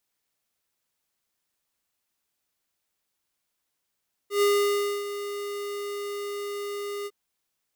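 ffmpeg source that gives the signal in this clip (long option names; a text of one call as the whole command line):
ffmpeg -f lavfi -i "aevalsrc='0.0944*(2*lt(mod(407*t,1),0.5)-1)':duration=2.805:sample_rate=44100,afade=type=in:duration=0.119,afade=type=out:start_time=0.119:duration=0.618:silence=0.237,afade=type=out:start_time=2.76:duration=0.045" out.wav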